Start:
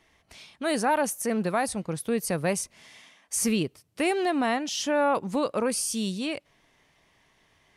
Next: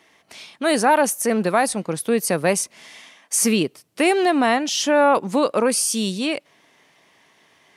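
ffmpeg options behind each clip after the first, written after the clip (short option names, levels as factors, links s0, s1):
-af "highpass=200,volume=2.51"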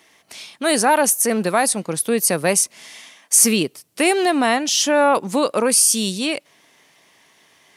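-af "highshelf=f=4600:g=9"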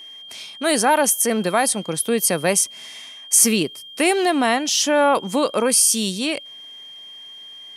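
-af "aeval=exprs='val(0)+0.0158*sin(2*PI*3200*n/s)':c=same,volume=0.891"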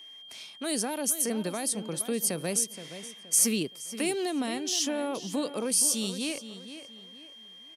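-filter_complex "[0:a]acrossover=split=460|3000[s0][s1][s2];[s1]acompressor=threshold=0.0282:ratio=6[s3];[s0][s3][s2]amix=inputs=3:normalize=0,asplit=2[s4][s5];[s5]adelay=472,lowpass=f=4100:p=1,volume=0.266,asplit=2[s6][s7];[s7]adelay=472,lowpass=f=4100:p=1,volume=0.35,asplit=2[s8][s9];[s9]adelay=472,lowpass=f=4100:p=1,volume=0.35,asplit=2[s10][s11];[s11]adelay=472,lowpass=f=4100:p=1,volume=0.35[s12];[s4][s6][s8][s10][s12]amix=inputs=5:normalize=0,volume=0.376"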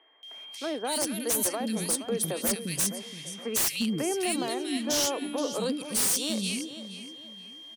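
-filter_complex "[0:a]acrossover=split=300|1900[s0][s1][s2];[s2]adelay=230[s3];[s0]adelay=350[s4];[s4][s1][s3]amix=inputs=3:normalize=0,aeval=exprs='0.0668*(abs(mod(val(0)/0.0668+3,4)-2)-1)':c=same,volume=1.5"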